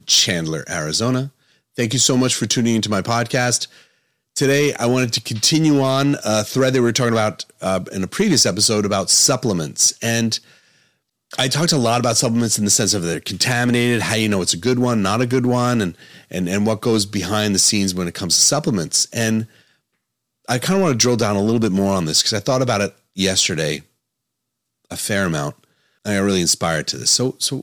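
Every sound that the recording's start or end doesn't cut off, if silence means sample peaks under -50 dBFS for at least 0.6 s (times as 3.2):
20.45–23.87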